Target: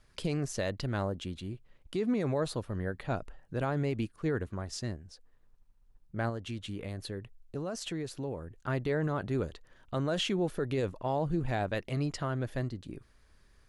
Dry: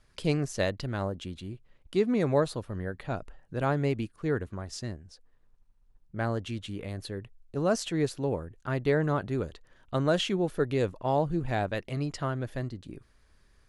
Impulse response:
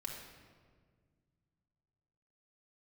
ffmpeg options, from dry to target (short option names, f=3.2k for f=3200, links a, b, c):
-filter_complex "[0:a]alimiter=limit=-22.5dB:level=0:latency=1:release=31,asettb=1/sr,asplit=3[a][b][c];[a]atrim=end=6.294[d];[b]atrim=start=6.29:end=8.56,asetpts=PTS-STARTPTS,afade=t=in:d=0.004:c=qsin,afade=t=out:st=2.266:d=0.004:c=qsin,acompressor=threshold=-35dB:ratio=3[e];[c]atrim=start=8.556[f];[d][e]acrossfade=d=0.004:c1=hsin:c2=qsin[g];[g][f]acrossfade=d=0.004:c1=qsin:c2=hsin"